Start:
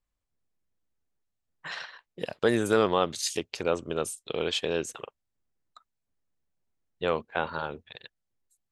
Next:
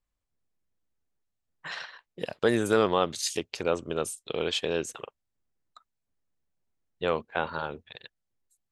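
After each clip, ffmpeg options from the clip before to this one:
ffmpeg -i in.wav -af anull out.wav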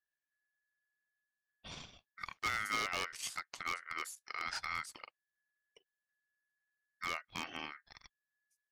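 ffmpeg -i in.wav -af "aeval=exprs='val(0)*sin(2*PI*1700*n/s)':channel_layout=same,aeval=exprs='0.119*(abs(mod(val(0)/0.119+3,4)-2)-1)':channel_layout=same,volume=-8dB" out.wav

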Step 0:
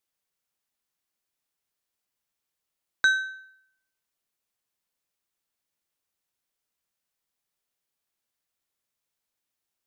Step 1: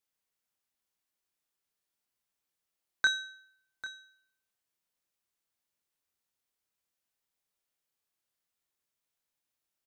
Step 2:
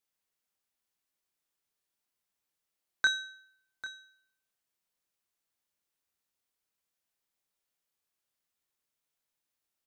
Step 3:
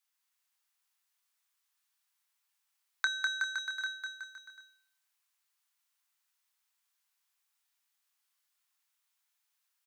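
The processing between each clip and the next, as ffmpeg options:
ffmpeg -i in.wav -filter_complex "[0:a]asplit=2[link_01][link_02];[link_02]adelay=27,volume=-5dB[link_03];[link_01][link_03]amix=inputs=2:normalize=0,aecho=1:1:795:0.178,volume=-4dB" out.wav
ffmpeg -i in.wav -af "bandreject=frequency=60:width_type=h:width=6,bandreject=frequency=120:width_type=h:width=6" out.wav
ffmpeg -i in.wav -af "highpass=frequency=880:width=0.5412,highpass=frequency=880:width=1.3066,aecho=1:1:200|370|514.5|637.3|741.7:0.631|0.398|0.251|0.158|0.1,acompressor=threshold=-32dB:ratio=5,volume=3.5dB" out.wav

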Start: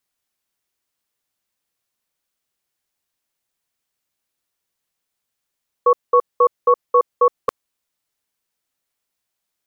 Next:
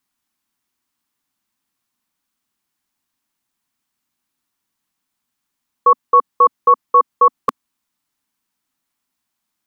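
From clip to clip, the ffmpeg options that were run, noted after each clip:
ffmpeg -i in.wav -af "equalizer=frequency=250:width_type=o:width=1:gain=11,equalizer=frequency=500:width_type=o:width=1:gain=-9,equalizer=frequency=1000:width_type=o:width=1:gain=6,volume=1.5dB" out.wav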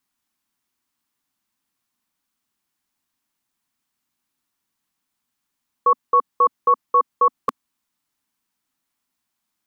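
ffmpeg -i in.wav -af "alimiter=limit=-7dB:level=0:latency=1:release=13,volume=-1.5dB" out.wav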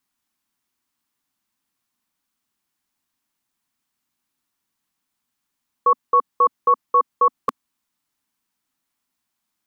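ffmpeg -i in.wav -af anull out.wav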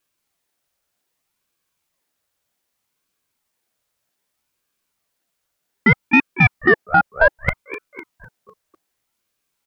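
ffmpeg -i in.wav -filter_complex "[0:a]asplit=6[link_01][link_02][link_03][link_04][link_05][link_06];[link_02]adelay=251,afreqshift=-70,volume=-14.5dB[link_07];[link_03]adelay=502,afreqshift=-140,volume=-20.3dB[link_08];[link_04]adelay=753,afreqshift=-210,volume=-26.2dB[link_09];[link_05]adelay=1004,afreqshift=-280,volume=-32dB[link_10];[link_06]adelay=1255,afreqshift=-350,volume=-37.9dB[link_11];[link_01][link_07][link_08][link_09][link_10][link_11]amix=inputs=6:normalize=0,aeval=exprs='0.447*(cos(1*acos(clip(val(0)/0.447,-1,1)))-cos(1*PI/2))+0.02*(cos(4*acos(clip(val(0)/0.447,-1,1)))-cos(4*PI/2))':channel_layout=same,aeval=exprs='val(0)*sin(2*PI*850*n/s+850*0.65/0.64*sin(2*PI*0.64*n/s))':channel_layout=same,volume=6dB" out.wav

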